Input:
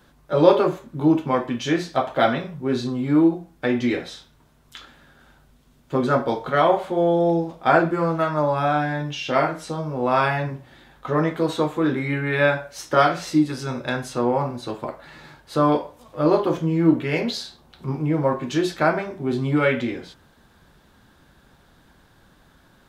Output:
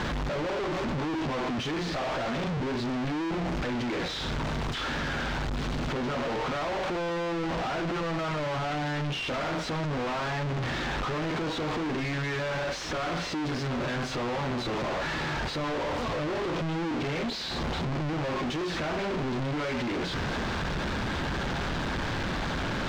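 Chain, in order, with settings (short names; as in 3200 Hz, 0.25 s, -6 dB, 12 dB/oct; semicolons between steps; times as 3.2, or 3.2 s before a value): infinite clipping; air absorption 160 m; gain -6.5 dB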